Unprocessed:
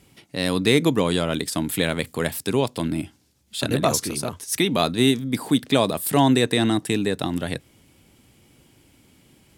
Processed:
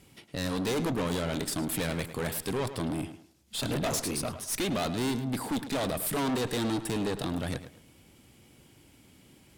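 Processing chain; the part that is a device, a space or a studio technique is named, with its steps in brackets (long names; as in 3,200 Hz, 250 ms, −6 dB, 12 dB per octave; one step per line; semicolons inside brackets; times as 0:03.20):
rockabilly slapback (tube saturation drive 27 dB, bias 0.5; tape delay 106 ms, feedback 31%, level −10 dB, low-pass 3,900 Hz)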